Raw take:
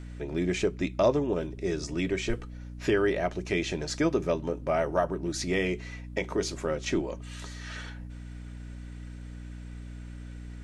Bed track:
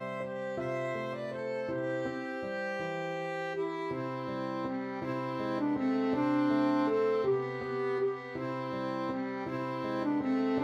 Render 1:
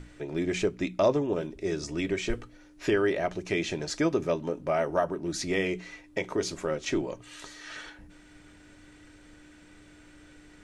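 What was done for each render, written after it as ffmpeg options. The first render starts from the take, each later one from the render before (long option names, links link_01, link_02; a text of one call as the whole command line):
ffmpeg -i in.wav -af "bandreject=frequency=60:width_type=h:width=6,bandreject=frequency=120:width_type=h:width=6,bandreject=frequency=180:width_type=h:width=6,bandreject=frequency=240:width_type=h:width=6" out.wav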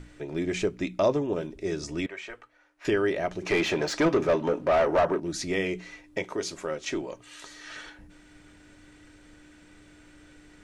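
ffmpeg -i in.wav -filter_complex "[0:a]asettb=1/sr,asplit=3[link_01][link_02][link_03];[link_01]atrim=end=2.064[link_04];[link_02]atrim=start=2.06:end=2.85,asetpts=PTS-STARTPTS,afade=type=in:duration=0.004:curve=qsin,afade=type=out:start_time=0.786:duration=0.004:curve=qsin,acrossover=split=600 2500:gain=0.0631 1 0.224[link_05][link_06][link_07];[link_05][link_06][link_07]amix=inputs=3:normalize=0[link_08];[link_03]atrim=start=2.846[link_09];[link_04][link_08]acrossfade=duration=0.004:curve1=hsin:curve2=qsin[link_10];[link_10][link_09]acrossfade=duration=0.004:curve1=qsin:curve2=hsin,asettb=1/sr,asplit=3[link_11][link_12][link_13];[link_11]atrim=end=3.424[link_14];[link_12]atrim=start=3.42:end=5.2,asetpts=PTS-STARTPTS,afade=type=in:duration=0.004:curve=qsin,afade=type=out:start_time=1.776:duration=0.004:curve=qsin,asplit=2[link_15][link_16];[link_16]highpass=frequency=720:poles=1,volume=21dB,asoftclip=type=tanh:threshold=-13.5dB[link_17];[link_15][link_17]amix=inputs=2:normalize=0,lowpass=frequency=1700:poles=1,volume=-6dB[link_18];[link_13]atrim=start=5.196[link_19];[link_14][link_18]acrossfade=duration=0.004:curve1=hsin:curve2=qsin[link_20];[link_20][link_19]acrossfade=duration=0.004:curve1=qsin:curve2=hsin,asettb=1/sr,asplit=3[link_21][link_22][link_23];[link_21]atrim=end=6.244[link_24];[link_22]atrim=start=6.24:end=7.51,asetpts=PTS-STARTPTS,afade=type=in:duration=0.004:curve=qsin,afade=type=out:start_time=1.266:duration=0.004:curve=qsin,lowshelf=frequency=260:gain=-8[link_25];[link_23]atrim=start=7.506[link_26];[link_24][link_25]acrossfade=duration=0.004:curve1=hsin:curve2=qsin[link_27];[link_27][link_26]acrossfade=duration=0.004:curve1=qsin:curve2=hsin" out.wav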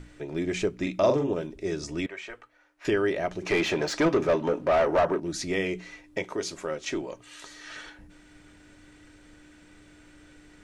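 ffmpeg -i in.wav -filter_complex "[0:a]asettb=1/sr,asplit=3[link_01][link_02][link_03];[link_01]atrim=end=0.754[link_04];[link_02]atrim=start=0.75:end=1.32,asetpts=PTS-STARTPTS,afade=type=in:duration=0.004:curve=qsin,afade=type=out:start_time=0.566:duration=0.004:curve=qsin,asplit=2[link_05][link_06];[link_06]adelay=43,volume=-4dB[link_07];[link_05][link_07]amix=inputs=2:normalize=0,atrim=end_sample=25137[link_08];[link_03]atrim=start=1.316[link_09];[link_04][link_08]acrossfade=duration=0.004:curve1=hsin:curve2=qsin[link_10];[link_10][link_09]acrossfade=duration=0.004:curve1=qsin:curve2=hsin" out.wav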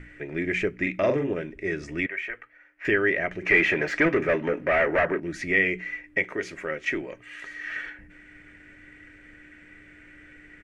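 ffmpeg -i in.wav -af "firequalizer=gain_entry='entry(500,0);entry(950,-6);entry(1900,14);entry(3800,-10)':delay=0.05:min_phase=1" out.wav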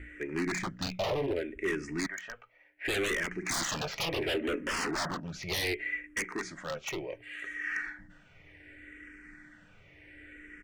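ffmpeg -i in.wav -filter_complex "[0:a]aeval=exprs='0.0668*(abs(mod(val(0)/0.0668+3,4)-2)-1)':channel_layout=same,asplit=2[link_01][link_02];[link_02]afreqshift=-0.68[link_03];[link_01][link_03]amix=inputs=2:normalize=1" out.wav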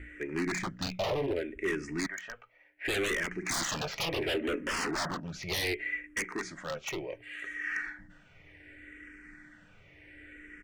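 ffmpeg -i in.wav -af anull out.wav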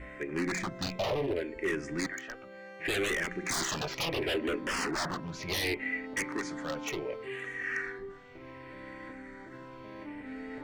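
ffmpeg -i in.wav -i bed.wav -filter_complex "[1:a]volume=-12.5dB[link_01];[0:a][link_01]amix=inputs=2:normalize=0" out.wav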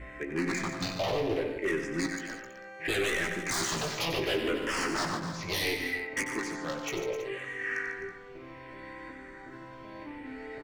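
ffmpeg -i in.wav -filter_complex "[0:a]asplit=2[link_01][link_02];[link_02]adelay=18,volume=-8.5dB[link_03];[link_01][link_03]amix=inputs=2:normalize=0,aecho=1:1:93|147|258|325:0.355|0.299|0.237|0.158" out.wav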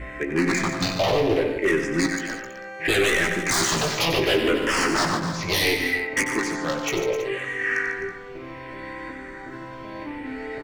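ffmpeg -i in.wav -af "volume=9dB" out.wav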